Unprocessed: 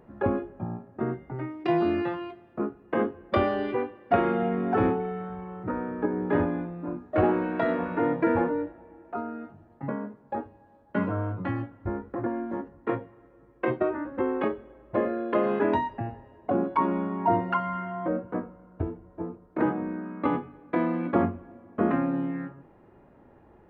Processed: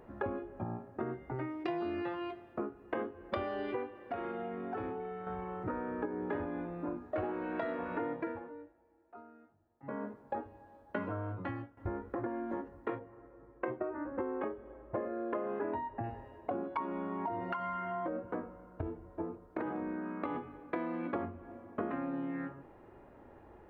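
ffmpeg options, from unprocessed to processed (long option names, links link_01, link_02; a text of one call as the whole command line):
ffmpeg -i in.wav -filter_complex "[0:a]asettb=1/sr,asplit=3[link_01][link_02][link_03];[link_01]atrim=end=4.034[link_04];[link_02]atrim=start=4.03:end=5.27,asetpts=PTS-STARTPTS,afade=type=in:duration=0.004:curve=qsin,afade=type=out:start_time=1.236:duration=0.004:curve=qsin,acompressor=threshold=-44dB:ratio=2:attack=3.2:release=140:knee=1:detection=peak[link_05];[link_03]atrim=start=5.266[link_06];[link_04][link_05]acrossfade=duration=0.004:curve1=hsin:curve2=qsin[link_07];[link_07][link_06]acrossfade=duration=0.004:curve1=qsin:curve2=hsin,asettb=1/sr,asplit=3[link_08][link_09][link_10];[link_08]atrim=end=12.994[link_11];[link_09]atrim=start=12.99:end=16.04,asetpts=PTS-STARTPTS,afade=type=in:duration=0.004:curve=qsin,afade=type=out:start_time=3.046:duration=0.004:curve=qsin,lowpass=1700[link_12];[link_10]atrim=start=16.036[link_13];[link_11][link_12]acrossfade=duration=0.004:curve1=hsin:curve2=qsin[link_14];[link_14][link_13]acrossfade=duration=0.004:curve1=qsin:curve2=hsin,asettb=1/sr,asplit=3[link_15][link_16][link_17];[link_15]atrim=end=17.094[link_18];[link_16]atrim=start=17.09:end=20.36,asetpts=PTS-STARTPTS,afade=type=in:duration=0.004:curve=qsin,afade=type=out:start_time=3.266:duration=0.004:curve=qsin,acompressor=threshold=-25dB:ratio=6:attack=3.2:release=140:knee=1:detection=peak[link_19];[link_17]atrim=start=20.356[link_20];[link_18][link_19]acrossfade=duration=0.004:curve1=hsin:curve2=qsin[link_21];[link_21][link_20]acrossfade=duration=0.004:curve1=qsin:curve2=hsin,asplit=4[link_22][link_23][link_24][link_25];[link_22]atrim=end=8.4,asetpts=PTS-STARTPTS,afade=type=out:start_time=8.13:duration=0.27:silence=0.105925[link_26];[link_23]atrim=start=8.4:end=9.82,asetpts=PTS-STARTPTS,volume=-19.5dB[link_27];[link_24]atrim=start=9.82:end=11.77,asetpts=PTS-STARTPTS,afade=type=in:duration=0.27:silence=0.105925,afade=type=out:start_time=1.31:duration=0.64:silence=0.177828[link_28];[link_25]atrim=start=11.77,asetpts=PTS-STARTPTS,afade=type=in:duration=0.004:curve=hsin:silence=0.177828[link_29];[link_26][link_27][link_28][link_29]concat=n=4:v=0:a=1,equalizer=frequency=170:width_type=o:width=1:gain=-7.5,acompressor=threshold=-35dB:ratio=6,volume=1dB" out.wav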